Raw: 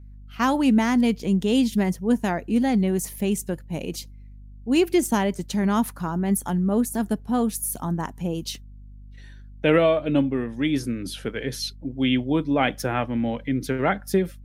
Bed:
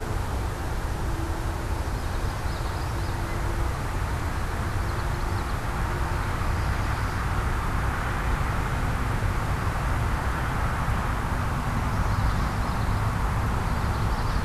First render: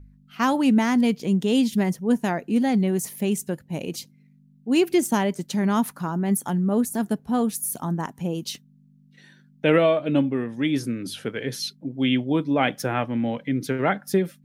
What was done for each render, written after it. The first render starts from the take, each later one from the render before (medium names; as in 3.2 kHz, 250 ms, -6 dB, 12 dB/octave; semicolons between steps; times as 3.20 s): de-hum 50 Hz, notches 2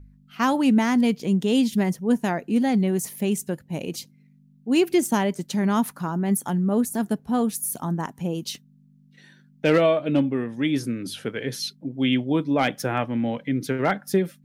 hard clipper -11 dBFS, distortion -30 dB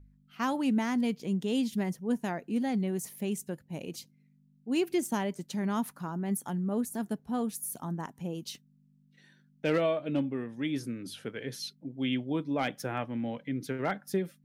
trim -9 dB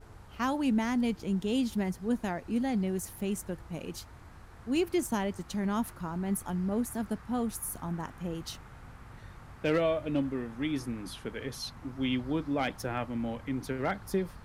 add bed -23 dB